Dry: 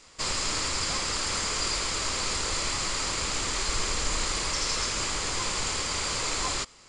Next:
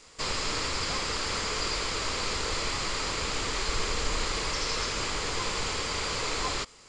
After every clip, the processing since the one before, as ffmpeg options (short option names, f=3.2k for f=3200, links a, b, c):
-filter_complex "[0:a]acrossover=split=5700[a][b];[b]acompressor=threshold=-45dB:ratio=4:attack=1:release=60[c];[a][c]amix=inputs=2:normalize=0,equalizer=f=450:w=7.1:g=6"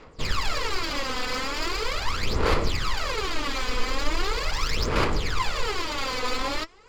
-af "aphaser=in_gain=1:out_gain=1:delay=4:decay=0.76:speed=0.4:type=sinusoidal,adynamicsmooth=sensitivity=2.5:basefreq=2.9k"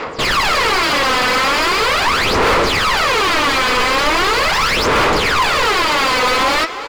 -filter_complex "[0:a]asplit=2[a][b];[b]highpass=f=720:p=1,volume=33dB,asoftclip=type=tanh:threshold=-8.5dB[c];[a][c]amix=inputs=2:normalize=0,lowpass=f=2.5k:p=1,volume=-6dB,asplit=2[d][e];[e]adelay=320,highpass=300,lowpass=3.4k,asoftclip=type=hard:threshold=-18.5dB,volume=-10dB[f];[d][f]amix=inputs=2:normalize=0,volume=2.5dB"